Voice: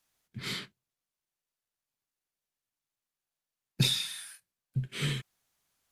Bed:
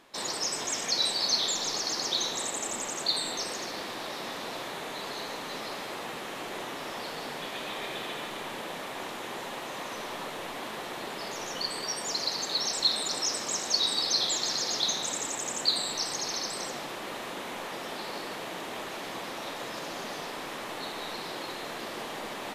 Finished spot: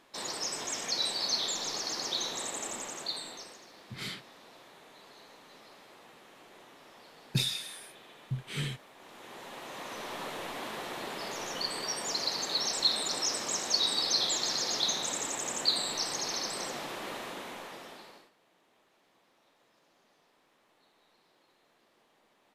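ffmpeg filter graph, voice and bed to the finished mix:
ffmpeg -i stem1.wav -i stem2.wav -filter_complex "[0:a]adelay=3550,volume=-3dB[link_01];[1:a]volume=12dB,afade=type=out:start_time=2.65:duration=0.96:silence=0.211349,afade=type=in:start_time=8.98:duration=1.3:silence=0.158489,afade=type=out:start_time=17.08:duration=1.23:silence=0.0334965[link_02];[link_01][link_02]amix=inputs=2:normalize=0" out.wav

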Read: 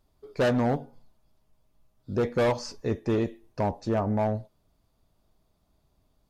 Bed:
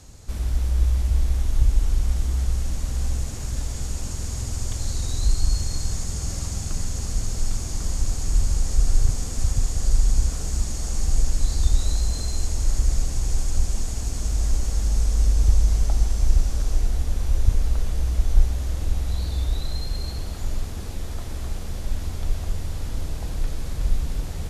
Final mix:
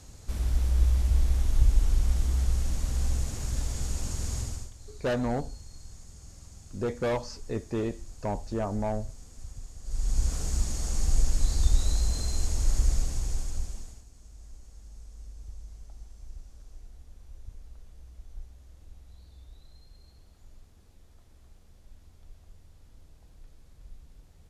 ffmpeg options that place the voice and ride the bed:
ffmpeg -i stem1.wav -i stem2.wav -filter_complex "[0:a]adelay=4650,volume=-4.5dB[link_01];[1:a]volume=14dB,afade=type=out:start_time=4.37:duration=0.34:silence=0.133352,afade=type=in:start_time=9.84:duration=0.51:silence=0.141254,afade=type=out:start_time=12.85:duration=1.2:silence=0.0749894[link_02];[link_01][link_02]amix=inputs=2:normalize=0" out.wav

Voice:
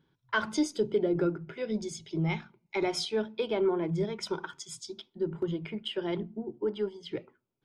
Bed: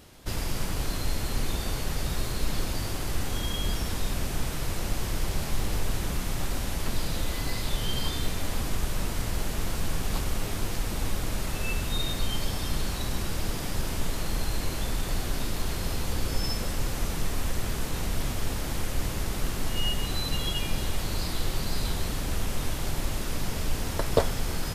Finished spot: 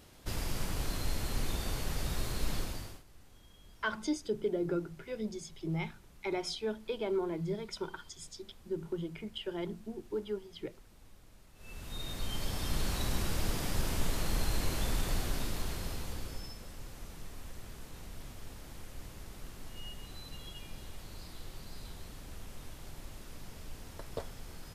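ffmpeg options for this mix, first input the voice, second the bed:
ffmpeg -i stem1.wav -i stem2.wav -filter_complex "[0:a]adelay=3500,volume=-5.5dB[link_01];[1:a]volume=20.5dB,afade=type=out:start_time=2.53:duration=0.5:silence=0.0668344,afade=type=in:start_time=11.55:duration=1.41:silence=0.0501187,afade=type=out:start_time=14.97:duration=1.57:silence=0.188365[link_02];[link_01][link_02]amix=inputs=2:normalize=0" out.wav

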